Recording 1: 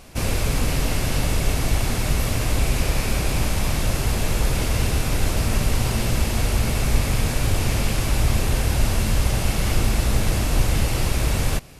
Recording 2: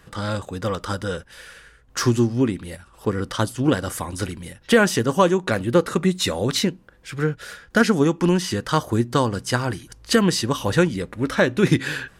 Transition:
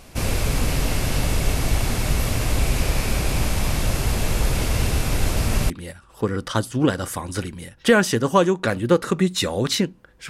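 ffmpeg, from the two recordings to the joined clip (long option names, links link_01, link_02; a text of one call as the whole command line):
ffmpeg -i cue0.wav -i cue1.wav -filter_complex "[0:a]apad=whole_dur=10.29,atrim=end=10.29,atrim=end=5.702[link_01];[1:a]atrim=start=2.538:end=7.13[link_02];[link_01][link_02]acrossfade=duration=0.004:curve1=hsin:curve2=hsin" out.wav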